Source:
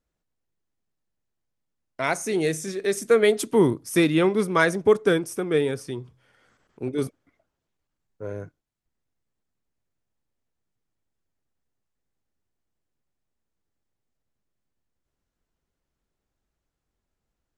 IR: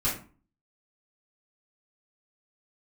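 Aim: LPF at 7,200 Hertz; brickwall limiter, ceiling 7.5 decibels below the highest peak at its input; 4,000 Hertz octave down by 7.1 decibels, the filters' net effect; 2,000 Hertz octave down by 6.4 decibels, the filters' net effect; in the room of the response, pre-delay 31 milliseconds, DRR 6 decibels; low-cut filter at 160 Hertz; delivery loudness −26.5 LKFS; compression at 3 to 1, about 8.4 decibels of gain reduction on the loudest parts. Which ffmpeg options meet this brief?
-filter_complex "[0:a]highpass=160,lowpass=7200,equalizer=frequency=2000:width_type=o:gain=-7.5,equalizer=frequency=4000:width_type=o:gain=-6,acompressor=threshold=-25dB:ratio=3,alimiter=limit=-21dB:level=0:latency=1,asplit=2[link_01][link_02];[1:a]atrim=start_sample=2205,adelay=31[link_03];[link_02][link_03]afir=irnorm=-1:irlink=0,volume=-15dB[link_04];[link_01][link_04]amix=inputs=2:normalize=0,volume=4dB"

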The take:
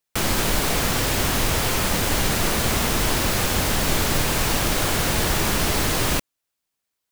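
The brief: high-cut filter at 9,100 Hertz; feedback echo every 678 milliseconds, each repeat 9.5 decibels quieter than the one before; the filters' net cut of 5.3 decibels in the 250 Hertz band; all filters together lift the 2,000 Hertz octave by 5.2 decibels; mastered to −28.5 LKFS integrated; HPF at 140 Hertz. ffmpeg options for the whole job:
ffmpeg -i in.wav -af "highpass=140,lowpass=9100,equalizer=frequency=250:width_type=o:gain=-6.5,equalizer=frequency=2000:width_type=o:gain=6.5,aecho=1:1:678|1356|2034|2712:0.335|0.111|0.0365|0.012,volume=-8dB" out.wav

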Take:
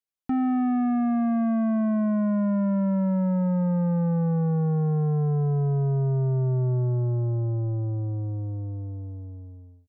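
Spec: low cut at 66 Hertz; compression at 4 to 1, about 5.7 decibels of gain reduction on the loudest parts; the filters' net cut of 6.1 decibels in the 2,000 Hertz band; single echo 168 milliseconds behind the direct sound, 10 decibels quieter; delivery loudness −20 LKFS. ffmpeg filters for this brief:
ffmpeg -i in.wav -af "highpass=66,equalizer=frequency=2000:width_type=o:gain=-8.5,acompressor=threshold=-28dB:ratio=4,aecho=1:1:168:0.316,volume=10dB" out.wav

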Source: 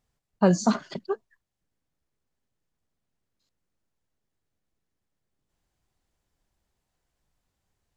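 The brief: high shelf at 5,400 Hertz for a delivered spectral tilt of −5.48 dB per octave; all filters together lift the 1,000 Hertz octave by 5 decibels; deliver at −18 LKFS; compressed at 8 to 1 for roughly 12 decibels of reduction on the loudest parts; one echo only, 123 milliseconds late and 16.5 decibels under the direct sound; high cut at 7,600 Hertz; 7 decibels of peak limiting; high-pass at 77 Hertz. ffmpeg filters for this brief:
ffmpeg -i in.wav -af "highpass=77,lowpass=7600,equalizer=frequency=1000:width_type=o:gain=6.5,highshelf=frequency=5400:gain=-3.5,acompressor=threshold=-26dB:ratio=8,alimiter=limit=-22.5dB:level=0:latency=1,aecho=1:1:123:0.15,volume=18.5dB" out.wav

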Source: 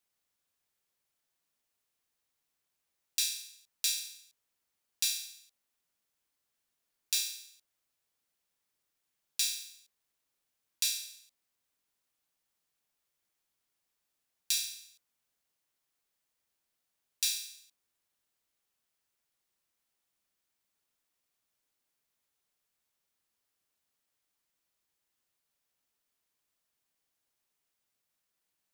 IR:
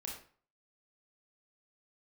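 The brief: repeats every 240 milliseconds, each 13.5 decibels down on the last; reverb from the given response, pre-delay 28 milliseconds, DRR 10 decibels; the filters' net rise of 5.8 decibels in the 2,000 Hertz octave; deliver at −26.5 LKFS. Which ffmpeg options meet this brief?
-filter_complex "[0:a]equalizer=frequency=2000:width_type=o:gain=8.5,aecho=1:1:240|480:0.211|0.0444,asplit=2[link_01][link_02];[1:a]atrim=start_sample=2205,adelay=28[link_03];[link_02][link_03]afir=irnorm=-1:irlink=0,volume=-8.5dB[link_04];[link_01][link_04]amix=inputs=2:normalize=0,volume=5dB"

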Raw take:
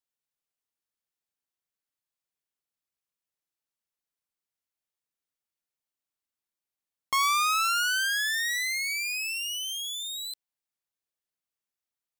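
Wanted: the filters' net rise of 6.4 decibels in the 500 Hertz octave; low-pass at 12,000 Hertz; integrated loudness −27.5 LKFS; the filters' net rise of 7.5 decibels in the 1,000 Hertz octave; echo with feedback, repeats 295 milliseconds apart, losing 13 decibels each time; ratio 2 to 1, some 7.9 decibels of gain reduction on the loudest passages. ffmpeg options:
ffmpeg -i in.wav -af "lowpass=12000,equalizer=frequency=500:width_type=o:gain=5,equalizer=frequency=1000:width_type=o:gain=9,acompressor=threshold=-30dB:ratio=2,aecho=1:1:295|590|885:0.224|0.0493|0.0108,volume=0.5dB" out.wav

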